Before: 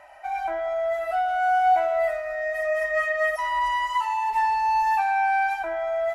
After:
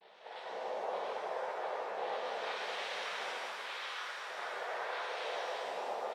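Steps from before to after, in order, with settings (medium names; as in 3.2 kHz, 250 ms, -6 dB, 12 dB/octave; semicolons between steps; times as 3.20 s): vibrato 0.82 Hz 35 cents; cascade formant filter e; doubling 23 ms -5 dB; compression, threshold -40 dBFS, peak gain reduction 13 dB; noise-vocoded speech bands 6; 2.95–3.69 s: distance through air 180 m; pitch-shifted reverb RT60 2 s, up +7 st, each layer -8 dB, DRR -5 dB; trim -3 dB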